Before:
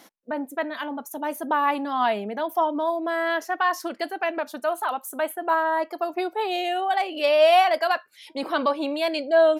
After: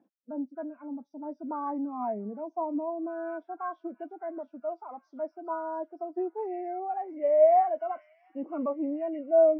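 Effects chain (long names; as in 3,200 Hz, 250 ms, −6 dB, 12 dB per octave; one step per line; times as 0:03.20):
hearing-aid frequency compression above 1,200 Hz 1.5 to 1
spectral tilt −5 dB per octave
on a send: delay with a high-pass on its return 683 ms, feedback 72%, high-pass 3,100 Hz, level −5 dB
on the sum: reversed playback
upward compression, threshold −27 dBFS
reversed playback
high-pass filter 180 Hz
every bin expanded away from the loudest bin 1.5 to 1
level −6 dB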